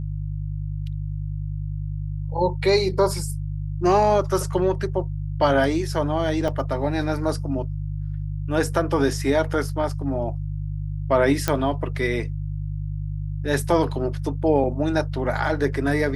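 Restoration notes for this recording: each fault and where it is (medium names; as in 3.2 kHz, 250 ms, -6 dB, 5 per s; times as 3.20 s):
hum 50 Hz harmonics 3 -28 dBFS
6.48 s: dropout 4.4 ms
11.48 s: pop -5 dBFS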